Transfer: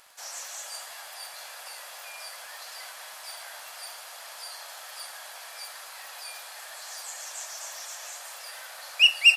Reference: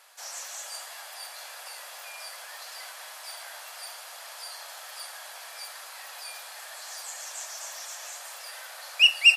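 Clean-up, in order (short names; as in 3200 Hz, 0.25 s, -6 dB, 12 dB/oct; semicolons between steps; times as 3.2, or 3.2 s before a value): clip repair -8 dBFS; de-click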